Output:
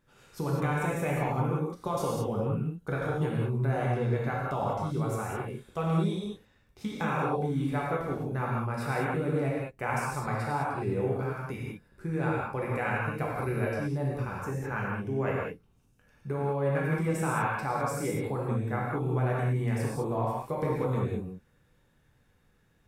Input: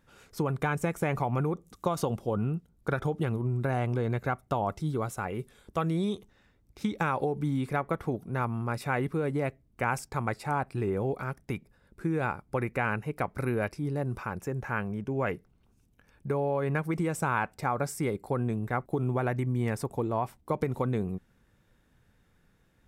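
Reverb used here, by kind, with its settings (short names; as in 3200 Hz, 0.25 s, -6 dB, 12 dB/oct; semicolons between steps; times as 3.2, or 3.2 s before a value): non-linear reverb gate 0.23 s flat, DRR -5 dB; gain -6 dB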